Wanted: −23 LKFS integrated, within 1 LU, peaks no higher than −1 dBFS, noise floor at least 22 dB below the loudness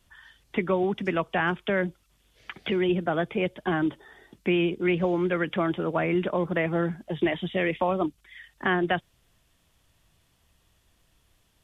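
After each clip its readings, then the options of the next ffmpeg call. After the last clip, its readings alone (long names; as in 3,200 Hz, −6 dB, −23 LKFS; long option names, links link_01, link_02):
integrated loudness −27.0 LKFS; sample peak −10.5 dBFS; target loudness −23.0 LKFS
→ -af "volume=4dB"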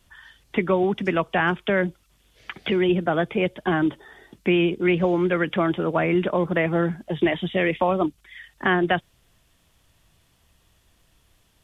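integrated loudness −23.0 LKFS; sample peak −6.5 dBFS; background noise floor −63 dBFS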